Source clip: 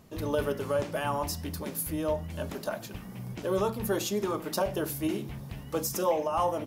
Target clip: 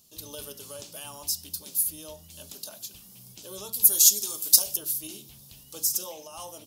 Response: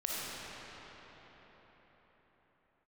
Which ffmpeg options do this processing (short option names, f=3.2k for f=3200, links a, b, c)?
-filter_complex "[0:a]aexciter=amount=8.7:drive=7.5:freq=3k,asettb=1/sr,asplit=3[a][b][c];[a]atrim=end=3.734[d];[b]atrim=start=3.73:end=4.77,asetpts=PTS-STARTPTS,afade=t=in:d=0.004:c=qsin,afade=t=out:st=1.036:d=0.004:c=qsin,bass=f=250:g=-2,treble=f=4k:g=14[e];[c]atrim=start=4.766[f];[d][e]acrossfade=d=0.004:c1=hsin:c2=qsin[g];[g][f]acrossfade=d=0.004:c1=qsin:c2=hsin,volume=-15.5dB"